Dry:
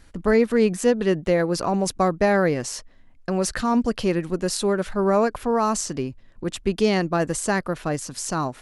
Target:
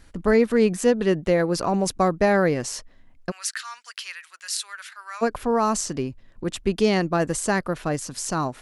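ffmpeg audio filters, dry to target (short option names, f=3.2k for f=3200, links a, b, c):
-filter_complex "[0:a]asplit=3[a][b][c];[a]afade=t=out:st=3.3:d=0.02[d];[b]highpass=f=1.5k:w=0.5412,highpass=f=1.5k:w=1.3066,afade=t=in:st=3.3:d=0.02,afade=t=out:st=5.21:d=0.02[e];[c]afade=t=in:st=5.21:d=0.02[f];[d][e][f]amix=inputs=3:normalize=0"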